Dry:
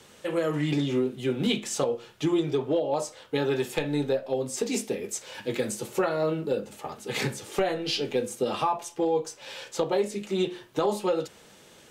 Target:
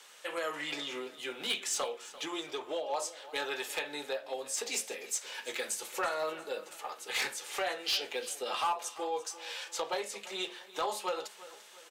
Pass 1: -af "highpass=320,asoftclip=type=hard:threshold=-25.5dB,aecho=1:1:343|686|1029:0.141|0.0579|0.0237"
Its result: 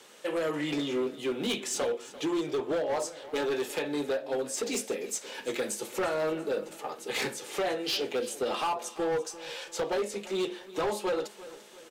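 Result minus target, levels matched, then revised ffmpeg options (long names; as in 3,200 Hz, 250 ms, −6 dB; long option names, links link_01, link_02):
250 Hz band +9.5 dB
-af "highpass=890,asoftclip=type=hard:threshold=-25.5dB,aecho=1:1:343|686|1029:0.141|0.0579|0.0237"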